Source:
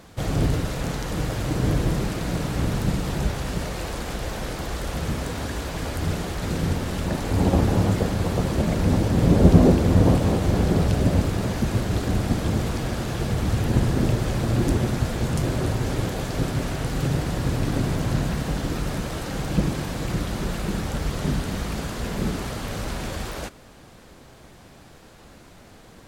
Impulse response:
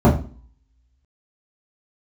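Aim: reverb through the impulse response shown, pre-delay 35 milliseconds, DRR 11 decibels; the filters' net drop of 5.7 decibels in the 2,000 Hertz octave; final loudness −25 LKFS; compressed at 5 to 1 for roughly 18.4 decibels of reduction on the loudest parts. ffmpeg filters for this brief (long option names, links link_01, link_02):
-filter_complex "[0:a]equalizer=frequency=2000:width_type=o:gain=-7.5,acompressor=threshold=-30dB:ratio=5,asplit=2[link_01][link_02];[1:a]atrim=start_sample=2205,adelay=35[link_03];[link_02][link_03]afir=irnorm=-1:irlink=0,volume=-34.5dB[link_04];[link_01][link_04]amix=inputs=2:normalize=0,volume=4dB"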